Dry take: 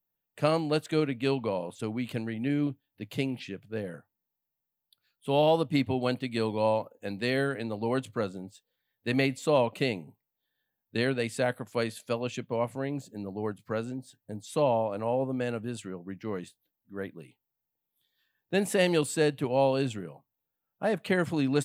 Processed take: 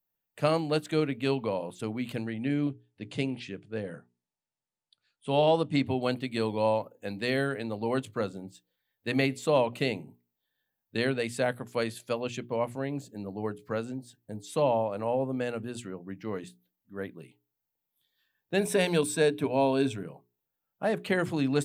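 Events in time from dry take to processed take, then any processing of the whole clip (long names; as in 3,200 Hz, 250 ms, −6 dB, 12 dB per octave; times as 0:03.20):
0:02.26–0:05.86: linear-phase brick-wall low-pass 10,000 Hz
0:18.59–0:20.03: EQ curve with evenly spaced ripples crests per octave 1.6, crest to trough 9 dB
whole clip: mains-hum notches 60/120/180/240/300/360/420 Hz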